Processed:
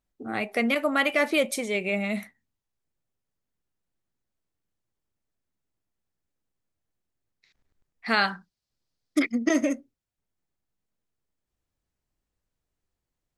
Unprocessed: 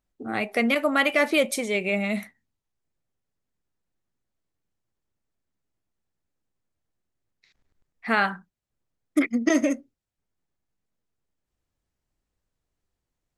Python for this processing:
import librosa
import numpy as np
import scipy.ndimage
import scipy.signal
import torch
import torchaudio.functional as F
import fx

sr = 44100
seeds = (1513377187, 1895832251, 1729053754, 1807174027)

y = fx.peak_eq(x, sr, hz=4700.0, db=14.0, octaves=0.88, at=(8.06, 9.32))
y = y * 10.0 ** (-2.0 / 20.0)